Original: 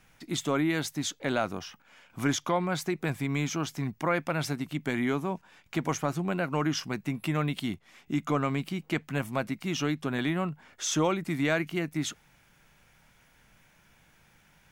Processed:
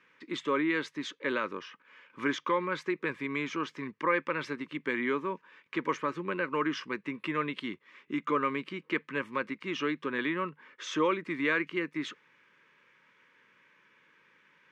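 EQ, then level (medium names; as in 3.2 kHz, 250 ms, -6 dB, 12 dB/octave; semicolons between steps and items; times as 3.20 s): band-pass 450–2100 Hz; Butterworth band-stop 720 Hz, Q 1.5; band-stop 1.4 kHz, Q 8.2; +5.0 dB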